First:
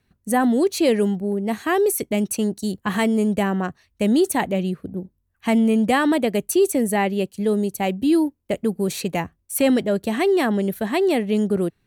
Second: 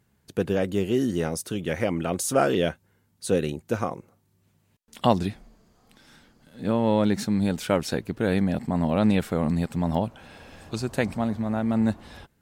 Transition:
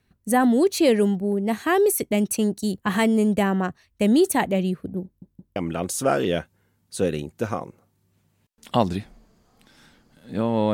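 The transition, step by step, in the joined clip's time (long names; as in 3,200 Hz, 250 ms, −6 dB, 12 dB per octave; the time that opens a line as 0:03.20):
first
0:05.05: stutter in place 0.17 s, 3 plays
0:05.56: continue with second from 0:01.86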